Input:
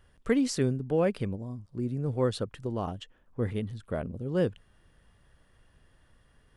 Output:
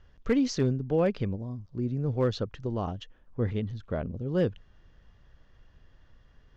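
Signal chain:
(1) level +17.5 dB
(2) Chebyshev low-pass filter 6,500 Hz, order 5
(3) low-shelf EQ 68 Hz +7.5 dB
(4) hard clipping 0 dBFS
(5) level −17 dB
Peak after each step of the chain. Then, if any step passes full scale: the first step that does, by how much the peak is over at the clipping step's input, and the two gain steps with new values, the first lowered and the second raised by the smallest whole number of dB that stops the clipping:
+5.0, +5.0, +5.0, 0.0, −17.0 dBFS
step 1, 5.0 dB
step 1 +12.5 dB, step 5 −12 dB

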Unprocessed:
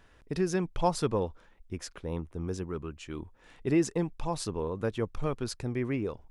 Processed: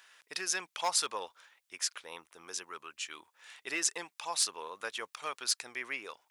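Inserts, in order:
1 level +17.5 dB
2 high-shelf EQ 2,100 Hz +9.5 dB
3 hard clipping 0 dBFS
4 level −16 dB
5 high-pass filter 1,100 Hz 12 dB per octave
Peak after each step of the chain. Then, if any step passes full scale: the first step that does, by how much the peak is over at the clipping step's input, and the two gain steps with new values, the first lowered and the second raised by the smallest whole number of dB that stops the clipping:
+3.5, +7.0, 0.0, −16.0, −13.5 dBFS
step 1, 7.0 dB
step 1 +10.5 dB, step 4 −9 dB

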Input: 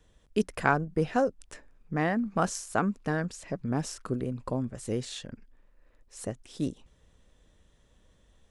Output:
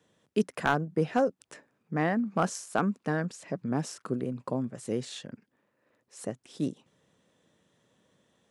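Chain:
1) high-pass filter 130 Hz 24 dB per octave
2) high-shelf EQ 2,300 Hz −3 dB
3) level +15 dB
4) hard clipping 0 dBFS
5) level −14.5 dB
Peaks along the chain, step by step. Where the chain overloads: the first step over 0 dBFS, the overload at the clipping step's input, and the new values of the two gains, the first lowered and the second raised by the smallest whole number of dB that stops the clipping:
−6.5, −7.0, +8.0, 0.0, −14.5 dBFS
step 3, 8.0 dB
step 3 +7 dB, step 5 −6.5 dB

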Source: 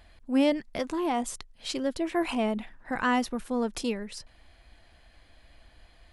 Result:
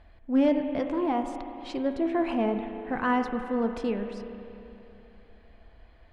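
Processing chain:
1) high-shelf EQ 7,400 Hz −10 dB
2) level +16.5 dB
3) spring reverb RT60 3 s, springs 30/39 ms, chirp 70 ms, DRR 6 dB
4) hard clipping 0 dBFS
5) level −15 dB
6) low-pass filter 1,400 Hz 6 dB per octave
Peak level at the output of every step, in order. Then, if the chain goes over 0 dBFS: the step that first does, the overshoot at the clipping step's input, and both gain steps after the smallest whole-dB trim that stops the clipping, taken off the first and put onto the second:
−13.5, +3.0, +4.0, 0.0, −15.0, −15.0 dBFS
step 2, 4.0 dB
step 2 +12.5 dB, step 5 −11 dB

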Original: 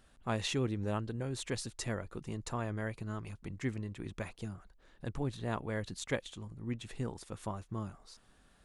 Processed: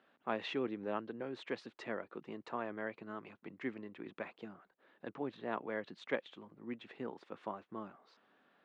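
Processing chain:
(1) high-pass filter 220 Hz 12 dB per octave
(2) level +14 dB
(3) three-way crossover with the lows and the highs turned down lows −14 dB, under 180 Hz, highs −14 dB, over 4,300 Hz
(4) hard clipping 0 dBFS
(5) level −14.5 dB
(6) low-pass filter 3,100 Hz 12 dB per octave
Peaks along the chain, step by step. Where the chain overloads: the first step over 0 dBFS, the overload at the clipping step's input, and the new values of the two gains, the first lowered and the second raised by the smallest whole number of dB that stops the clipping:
−18.0, −4.0, −5.5, −5.5, −20.0, −20.5 dBFS
no step passes full scale

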